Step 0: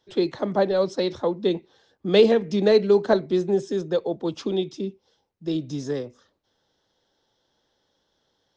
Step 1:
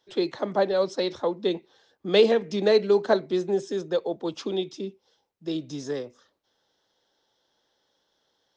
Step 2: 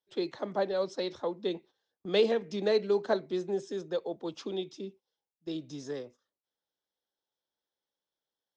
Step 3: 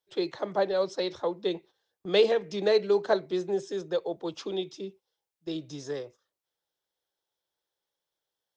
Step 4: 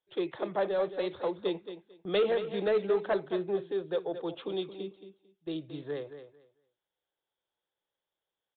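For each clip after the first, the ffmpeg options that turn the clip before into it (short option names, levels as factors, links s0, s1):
-af "lowshelf=f=230:g=-10.5"
-af "agate=range=0.2:threshold=0.00562:ratio=16:detection=peak,volume=0.447"
-af "equalizer=f=240:t=o:w=0.3:g=-13.5,volume=1.58"
-af "aresample=8000,asoftclip=type=tanh:threshold=0.112,aresample=44100,aecho=1:1:223|446|669:0.282|0.0535|0.0102,volume=0.841"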